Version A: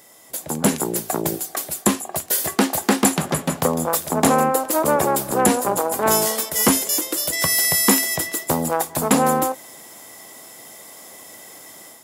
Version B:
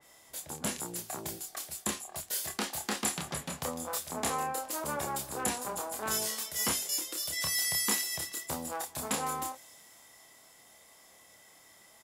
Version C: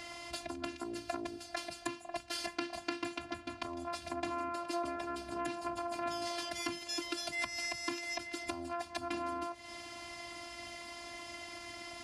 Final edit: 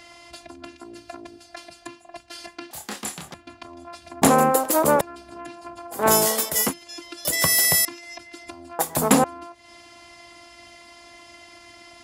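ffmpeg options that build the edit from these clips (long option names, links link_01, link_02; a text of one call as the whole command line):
ffmpeg -i take0.wav -i take1.wav -i take2.wav -filter_complex "[0:a]asplit=4[link_01][link_02][link_03][link_04];[2:a]asplit=6[link_05][link_06][link_07][link_08][link_09][link_10];[link_05]atrim=end=2.712[link_11];[1:a]atrim=start=2.708:end=3.342[link_12];[link_06]atrim=start=3.338:end=4.222[link_13];[link_01]atrim=start=4.218:end=5.012[link_14];[link_07]atrim=start=5.008:end=6.06[link_15];[link_02]atrim=start=5.9:end=6.74[link_16];[link_08]atrim=start=6.58:end=7.252[link_17];[link_03]atrim=start=7.248:end=7.852[link_18];[link_09]atrim=start=7.848:end=8.792[link_19];[link_04]atrim=start=8.788:end=9.242[link_20];[link_10]atrim=start=9.238[link_21];[link_11][link_12]acrossfade=duration=0.004:curve1=hsin:curve2=hsin[link_22];[link_22][link_13]acrossfade=duration=0.004:curve1=hsin:curve2=hsin[link_23];[link_23][link_14]acrossfade=duration=0.004:curve1=hsin:curve2=hsin[link_24];[link_24][link_15]acrossfade=duration=0.004:curve1=hsin:curve2=hsin[link_25];[link_25][link_16]acrossfade=duration=0.16:curve1=tri:curve2=tri[link_26];[link_26][link_17]acrossfade=duration=0.16:curve1=tri:curve2=tri[link_27];[link_27][link_18]acrossfade=duration=0.004:curve1=hsin:curve2=hsin[link_28];[link_28][link_19]acrossfade=duration=0.004:curve1=hsin:curve2=hsin[link_29];[link_29][link_20]acrossfade=duration=0.004:curve1=hsin:curve2=hsin[link_30];[link_30][link_21]acrossfade=duration=0.004:curve1=hsin:curve2=hsin" out.wav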